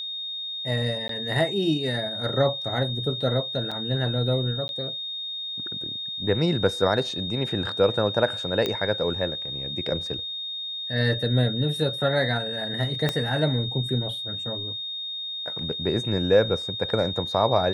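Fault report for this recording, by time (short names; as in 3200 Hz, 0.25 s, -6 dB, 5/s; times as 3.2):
tone 3700 Hz -30 dBFS
1.08–1.09 gap 13 ms
3.71–3.72 gap 5.6 ms
4.68–4.69 gap 11 ms
8.66 pop -12 dBFS
13.09 pop -10 dBFS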